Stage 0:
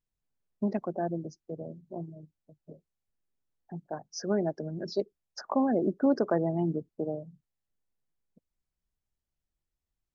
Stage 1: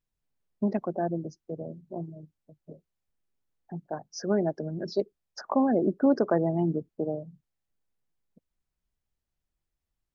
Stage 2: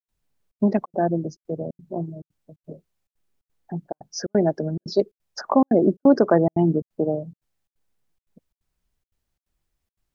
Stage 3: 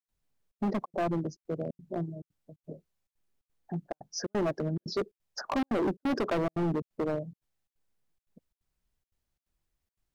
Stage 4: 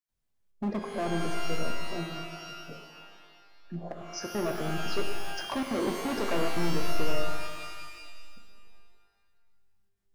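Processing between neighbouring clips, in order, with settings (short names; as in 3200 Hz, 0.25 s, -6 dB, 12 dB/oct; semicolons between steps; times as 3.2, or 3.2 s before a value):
high shelf 4800 Hz -5 dB; gain +2.5 dB
step gate ".xxxxx.xxx" 176 bpm -60 dB; gain +7.5 dB
hard clip -21 dBFS, distortion -5 dB; gain -4.5 dB
spectral repair 3.53–3.86, 380–1200 Hz both; shimmer reverb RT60 1.7 s, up +12 st, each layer -2 dB, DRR 4.5 dB; gain -3 dB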